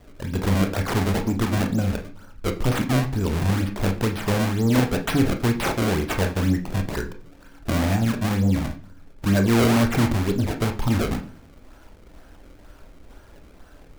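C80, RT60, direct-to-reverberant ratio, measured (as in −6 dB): 17.0 dB, 0.45 s, 4.5 dB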